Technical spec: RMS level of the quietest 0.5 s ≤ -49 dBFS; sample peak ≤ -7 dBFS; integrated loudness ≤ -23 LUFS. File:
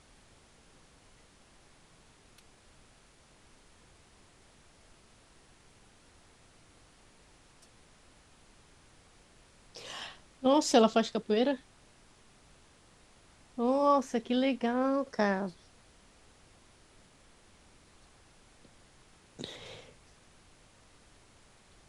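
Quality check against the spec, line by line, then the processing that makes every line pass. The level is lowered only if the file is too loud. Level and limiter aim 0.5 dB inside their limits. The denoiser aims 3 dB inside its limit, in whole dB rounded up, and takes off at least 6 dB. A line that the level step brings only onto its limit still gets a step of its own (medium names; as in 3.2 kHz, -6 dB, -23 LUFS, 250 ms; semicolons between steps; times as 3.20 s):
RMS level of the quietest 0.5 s -61 dBFS: pass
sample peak -10.5 dBFS: pass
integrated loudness -30.0 LUFS: pass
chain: none needed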